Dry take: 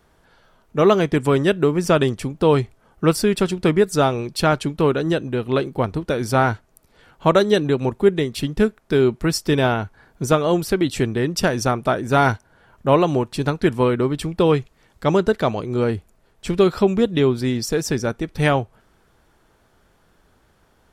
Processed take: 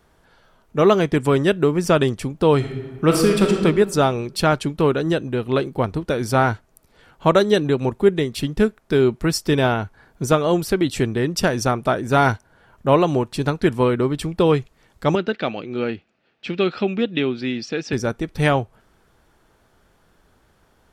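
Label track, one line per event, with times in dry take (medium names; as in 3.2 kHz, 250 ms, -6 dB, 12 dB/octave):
2.560000	3.630000	reverb throw, RT60 1.5 s, DRR 2 dB
15.150000	17.930000	cabinet simulation 220–4600 Hz, peaks and dips at 420 Hz -6 dB, 640 Hz -4 dB, 1 kHz -10 dB, 2.6 kHz +7 dB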